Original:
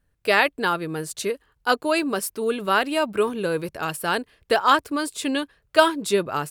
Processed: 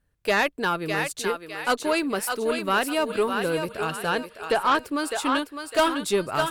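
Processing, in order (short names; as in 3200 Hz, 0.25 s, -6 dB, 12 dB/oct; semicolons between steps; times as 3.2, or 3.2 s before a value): 3.74–4.75 treble ducked by the level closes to 2400 Hz, closed at -14 dBFS; thinning echo 0.606 s, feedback 39%, high-pass 530 Hz, level -5.5 dB; added harmonics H 5 -14 dB, 8 -27 dB, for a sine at -2 dBFS; gain -7.5 dB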